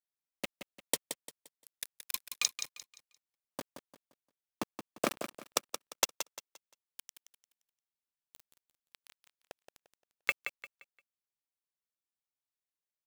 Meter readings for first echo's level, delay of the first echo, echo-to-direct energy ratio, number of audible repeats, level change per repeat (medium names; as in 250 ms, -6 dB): -9.0 dB, 174 ms, -8.5 dB, 3, -10.0 dB